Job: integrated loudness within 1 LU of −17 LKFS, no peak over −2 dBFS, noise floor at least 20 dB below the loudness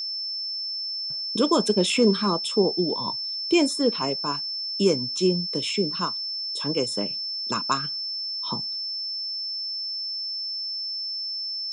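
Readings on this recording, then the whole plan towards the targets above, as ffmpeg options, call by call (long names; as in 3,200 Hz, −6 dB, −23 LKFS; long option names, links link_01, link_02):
interfering tone 5,300 Hz; level of the tone −28 dBFS; integrated loudness −25.0 LKFS; sample peak −8.5 dBFS; target loudness −17.0 LKFS
→ -af "bandreject=frequency=5300:width=30"
-af "volume=8dB,alimiter=limit=-2dB:level=0:latency=1"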